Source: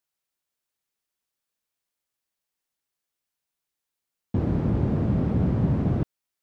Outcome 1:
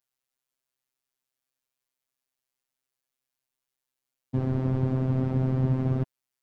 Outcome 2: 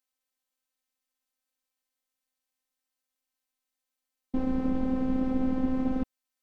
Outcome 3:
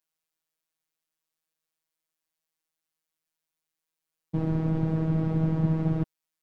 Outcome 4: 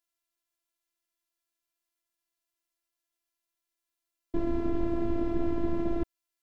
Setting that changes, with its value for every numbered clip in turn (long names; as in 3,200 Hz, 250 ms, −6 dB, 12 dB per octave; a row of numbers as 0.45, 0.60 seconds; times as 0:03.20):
phases set to zero, frequency: 130, 260, 160, 340 Hertz